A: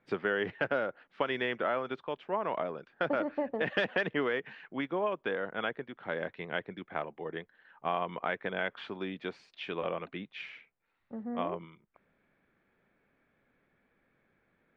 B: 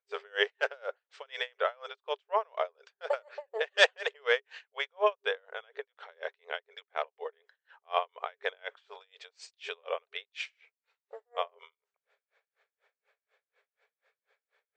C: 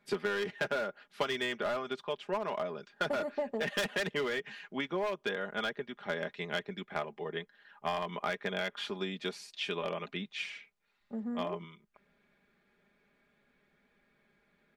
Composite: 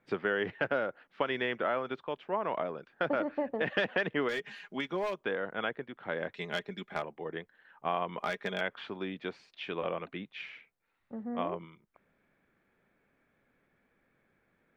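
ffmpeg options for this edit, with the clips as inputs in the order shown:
-filter_complex "[2:a]asplit=3[s0][s1][s2];[0:a]asplit=4[s3][s4][s5][s6];[s3]atrim=end=4.292[s7];[s0]atrim=start=4.288:end=5.202[s8];[s4]atrim=start=5.198:end=6.342[s9];[s1]atrim=start=6.338:end=7.022[s10];[s5]atrim=start=7.018:end=8.182[s11];[s2]atrim=start=8.178:end=8.612[s12];[s6]atrim=start=8.608[s13];[s7][s8]acrossfade=d=0.004:c1=hsin:c2=hsin[s14];[s14][s9]acrossfade=d=0.004:c1=hsin:c2=hsin[s15];[s15][s10]acrossfade=d=0.004:c1=hsin:c2=hsin[s16];[s16][s11]acrossfade=d=0.004:c1=hsin:c2=hsin[s17];[s17][s12]acrossfade=d=0.004:c1=hsin:c2=hsin[s18];[s18][s13]acrossfade=d=0.004:c1=hsin:c2=hsin"

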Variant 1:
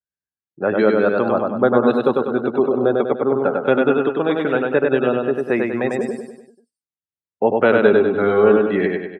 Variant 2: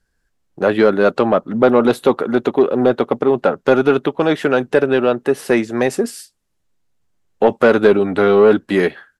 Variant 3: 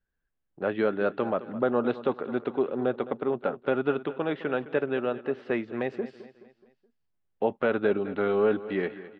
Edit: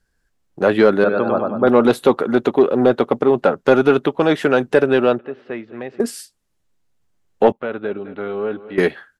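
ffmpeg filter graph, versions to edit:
-filter_complex "[2:a]asplit=2[s0][s1];[1:a]asplit=4[s2][s3][s4][s5];[s2]atrim=end=1.042[s6];[0:a]atrim=start=1.038:end=1.672[s7];[s3]atrim=start=1.668:end=5.192[s8];[s0]atrim=start=5.188:end=6.002[s9];[s4]atrim=start=5.998:end=7.522[s10];[s1]atrim=start=7.518:end=8.782[s11];[s5]atrim=start=8.778[s12];[s6][s7]acrossfade=d=0.004:c1=hsin:c2=hsin[s13];[s13][s8]acrossfade=d=0.004:c1=hsin:c2=hsin[s14];[s14][s9]acrossfade=d=0.004:c1=hsin:c2=hsin[s15];[s15][s10]acrossfade=d=0.004:c1=hsin:c2=hsin[s16];[s16][s11]acrossfade=d=0.004:c1=hsin:c2=hsin[s17];[s17][s12]acrossfade=d=0.004:c1=hsin:c2=hsin"

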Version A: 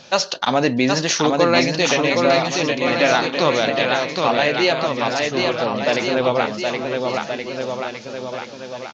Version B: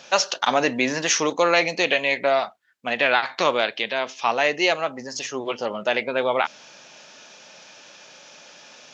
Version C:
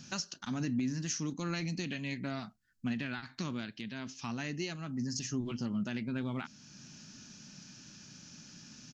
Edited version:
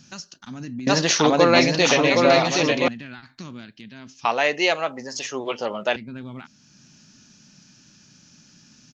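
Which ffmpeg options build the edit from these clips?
-filter_complex "[2:a]asplit=3[s0][s1][s2];[s0]atrim=end=0.872[s3];[0:a]atrim=start=0.868:end=2.882[s4];[s1]atrim=start=2.878:end=4.252[s5];[1:a]atrim=start=4.248:end=5.962[s6];[s2]atrim=start=5.958[s7];[s3][s4]acrossfade=d=0.004:c1=hsin:c2=hsin[s8];[s8][s5]acrossfade=d=0.004:c1=hsin:c2=hsin[s9];[s9][s6]acrossfade=d=0.004:c1=hsin:c2=hsin[s10];[s10][s7]acrossfade=d=0.004:c1=hsin:c2=hsin"

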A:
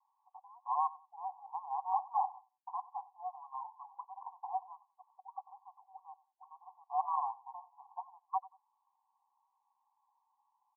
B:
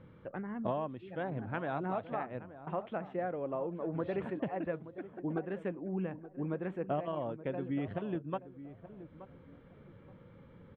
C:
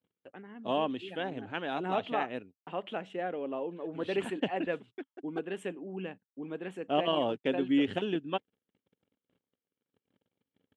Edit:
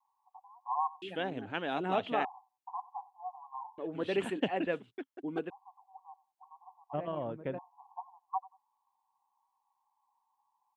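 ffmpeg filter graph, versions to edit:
-filter_complex "[2:a]asplit=2[s0][s1];[0:a]asplit=4[s2][s3][s4][s5];[s2]atrim=end=1.022[s6];[s0]atrim=start=1.018:end=2.252[s7];[s3]atrim=start=2.248:end=3.782[s8];[s1]atrim=start=3.778:end=5.502[s9];[s4]atrim=start=5.498:end=6.95[s10];[1:a]atrim=start=6.93:end=7.59[s11];[s5]atrim=start=7.57[s12];[s6][s7]acrossfade=d=0.004:c1=hsin:c2=hsin[s13];[s13][s8]acrossfade=d=0.004:c1=hsin:c2=hsin[s14];[s14][s9]acrossfade=d=0.004:c1=hsin:c2=hsin[s15];[s15][s10]acrossfade=d=0.004:c1=hsin:c2=hsin[s16];[s16][s11]acrossfade=d=0.02:c1=tri:c2=tri[s17];[s17][s12]acrossfade=d=0.02:c1=tri:c2=tri"

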